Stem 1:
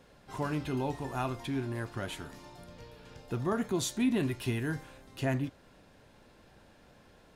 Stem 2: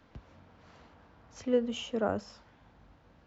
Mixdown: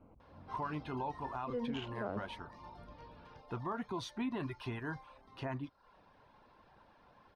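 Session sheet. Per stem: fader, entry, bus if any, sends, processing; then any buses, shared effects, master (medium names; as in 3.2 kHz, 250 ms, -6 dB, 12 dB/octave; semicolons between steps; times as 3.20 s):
-7.5 dB, 0.20 s, no send, reverb removal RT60 0.53 s; Savitzky-Golay filter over 15 samples; peaking EQ 1 kHz +13.5 dB 0.85 oct
+2.5 dB, 0.00 s, no send, local Wiener filter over 25 samples; low-pass 3 kHz 12 dB/octave; slow attack 258 ms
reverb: none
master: peak limiter -30 dBFS, peak gain reduction 9 dB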